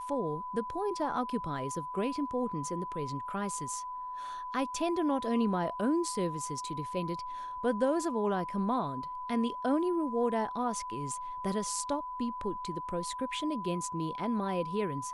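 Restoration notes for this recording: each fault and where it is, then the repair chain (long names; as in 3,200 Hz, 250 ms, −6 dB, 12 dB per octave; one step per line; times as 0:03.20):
whistle 1,000 Hz −37 dBFS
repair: notch filter 1,000 Hz, Q 30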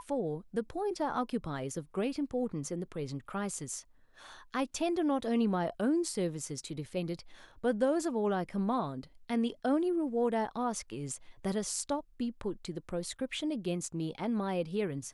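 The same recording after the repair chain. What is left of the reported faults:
none of them is left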